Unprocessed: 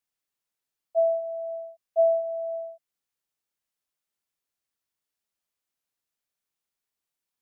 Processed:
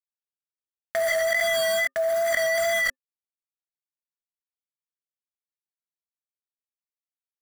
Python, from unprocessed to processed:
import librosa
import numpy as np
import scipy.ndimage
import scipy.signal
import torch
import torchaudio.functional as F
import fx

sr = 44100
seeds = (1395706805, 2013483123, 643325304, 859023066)

p1 = fx.low_shelf(x, sr, hz=500.0, db=10.5, at=(1.1, 2.57), fade=0.02)
p2 = p1 + fx.echo_single(p1, sr, ms=286, db=-18.5, dry=0)
p3 = fx.room_shoebox(p2, sr, seeds[0], volume_m3=2800.0, walls='furnished', distance_m=5.0)
p4 = fx.quant_dither(p3, sr, seeds[1], bits=6, dither='none')
p5 = fx.curve_eq(p4, sr, hz=(260.0, 380.0, 540.0, 850.0, 1200.0, 1800.0, 2600.0), db=(0, -14, -3, -13, 10, 11, -6))
p6 = fx.wow_flutter(p5, sr, seeds[2], rate_hz=2.1, depth_cents=23.0)
p7 = fx.chorus_voices(p6, sr, voices=6, hz=0.33, base_ms=21, depth_ms=2.3, mix_pct=30)
y = fx.env_flatten(p7, sr, amount_pct=100)